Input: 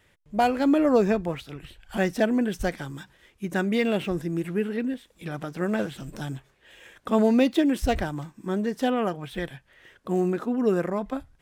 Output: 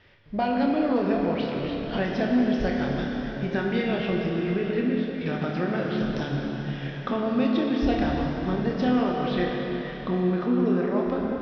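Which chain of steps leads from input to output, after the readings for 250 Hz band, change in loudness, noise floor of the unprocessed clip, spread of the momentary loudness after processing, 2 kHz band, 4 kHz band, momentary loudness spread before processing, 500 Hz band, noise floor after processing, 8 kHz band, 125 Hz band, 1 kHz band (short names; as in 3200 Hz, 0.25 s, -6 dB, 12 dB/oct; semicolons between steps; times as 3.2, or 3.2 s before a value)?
+1.0 dB, 0.0 dB, -64 dBFS, 7 LU, +0.5 dB, +1.5 dB, 16 LU, -0.5 dB, -35 dBFS, under -10 dB, +3.5 dB, -0.5 dB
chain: steep low-pass 5400 Hz 72 dB/oct; compressor 4:1, threshold -31 dBFS, peak gain reduction 13.5 dB; on a send: flutter echo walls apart 4.8 m, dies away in 0.22 s; on the sum: plate-style reverb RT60 4.6 s, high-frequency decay 0.85×, DRR -1 dB; gain +4.5 dB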